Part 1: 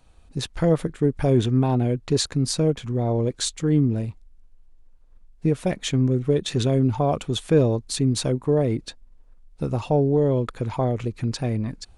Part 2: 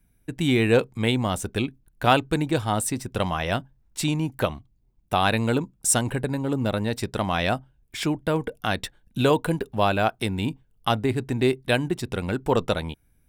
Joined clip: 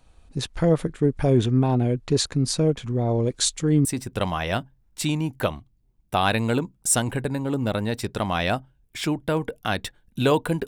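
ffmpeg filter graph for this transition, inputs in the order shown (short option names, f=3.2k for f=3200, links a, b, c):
-filter_complex "[0:a]asettb=1/sr,asplit=3[a][b][c];[a]atrim=end=3.094[d];[b]atrim=start=3.09:end=3.85,asetpts=PTS-STARTPTS,afade=t=in:d=0.004:c=qsin,afade=t=out:st=0.756:d=0.004:c=qsin,highshelf=f=3.9k:g=5.5[e];[c]atrim=start=3.846[f];[d][e]acrossfade=d=0.004:c1=hsin:c2=qsin[g];[g][f]acrossfade=d=0.004:c1=qsin:c2=hsin,apad=whole_dur=10.67,atrim=end=10.67,atrim=end=3.852[h];[1:a]atrim=start=2.838:end=9.66[i];[h][i]acrossfade=d=0.004:c1=hsin:c2=hsin"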